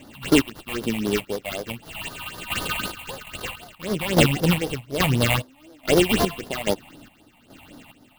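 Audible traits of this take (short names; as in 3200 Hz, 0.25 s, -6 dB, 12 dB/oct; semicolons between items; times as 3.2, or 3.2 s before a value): a buzz of ramps at a fixed pitch in blocks of 16 samples; chopped level 1.2 Hz, depth 65%, duty 50%; aliases and images of a low sample rate 5600 Hz, jitter 20%; phasing stages 6, 3.9 Hz, lowest notch 370–2600 Hz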